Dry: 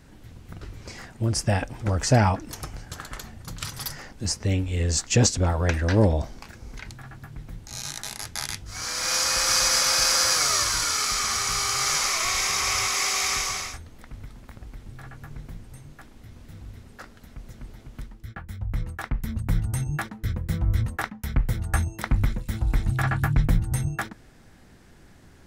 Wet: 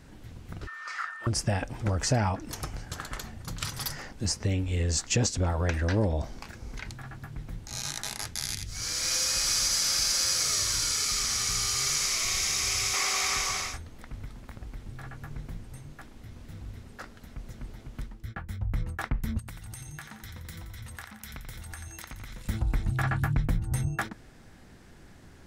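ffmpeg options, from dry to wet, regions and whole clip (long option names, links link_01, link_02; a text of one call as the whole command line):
ffmpeg -i in.wav -filter_complex "[0:a]asettb=1/sr,asplit=3[link_01][link_02][link_03];[link_01]atrim=end=0.674[link_04];[link_02]atrim=start=0.67:end=1.27,asetpts=PTS-STARTPTS,afade=type=in:duration=0.004:curve=qsin,afade=type=out:start_time=0.596:duration=0.004:curve=qsin,highshelf=frequency=6900:gain=-9.5,aeval=exprs='val(0)+0.00501*sin(2*PI*1800*n/s)':channel_layout=same,highpass=frequency=1300:width_type=q:width=12[link_05];[link_03]atrim=start=1.266[link_06];[link_04][link_05]acrossfade=duration=0.004:curve1=hsin:curve2=qsin[link_07];[link_07][link_06]acrossfade=duration=0.004:curve1=qsin:curve2=hsin,asettb=1/sr,asplit=3[link_08][link_09][link_10];[link_08]atrim=end=8.344[link_11];[link_09]atrim=start=8.34:end=12.94,asetpts=PTS-STARTPTS,afade=type=in:duration=0.004:curve=qsin,afade=type=out:start_time=4.596:duration=0.004:curve=qsin,equalizer=frequency=980:width=0.61:gain=-12,aecho=1:1:83:0.596,atrim=end_sample=202860[link_12];[link_10]atrim=start=12.936[link_13];[link_11][link_12]acrossfade=duration=0.004:curve1=hsin:curve2=qsin[link_14];[link_14][link_13]acrossfade=duration=0.004:curve1=qsin:curve2=hsin,asettb=1/sr,asplit=3[link_15][link_16][link_17];[link_15]atrim=end=19.394[link_18];[link_16]atrim=start=19.39:end=22.48,asetpts=PTS-STARTPTS,afade=type=in:duration=0.004:curve=qsin,afade=type=out:start_time=3.086:duration=0.004:curve=qsin,tiltshelf=frequency=1100:gain=-8,acompressor=threshold=-38dB:ratio=16:attack=3.2:release=140:knee=1:detection=peak,aecho=1:1:87|174|261|348|435|522|609:0.398|0.223|0.125|0.0699|0.0392|0.0219|0.0123,atrim=end_sample=136269[link_19];[link_17]atrim=start=22.476[link_20];[link_18][link_19]acrossfade=duration=0.004:curve1=hsin:curve2=qsin[link_21];[link_21][link_20]acrossfade=duration=0.004:curve1=qsin:curve2=hsin,highshelf=frequency=12000:gain=-3.5,acompressor=threshold=-25dB:ratio=2.5" out.wav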